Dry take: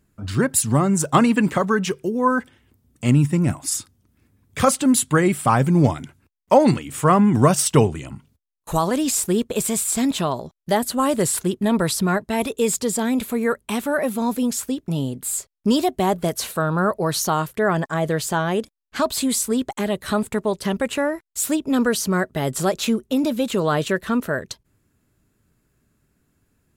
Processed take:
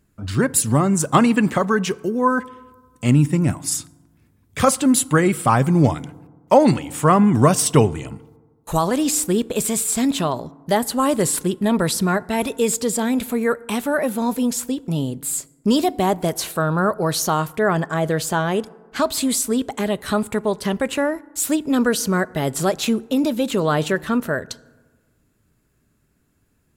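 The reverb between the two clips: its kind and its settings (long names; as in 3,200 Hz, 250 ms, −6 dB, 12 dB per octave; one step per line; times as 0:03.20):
feedback delay network reverb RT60 1.4 s, low-frequency decay 1.05×, high-frequency decay 0.4×, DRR 20 dB
level +1 dB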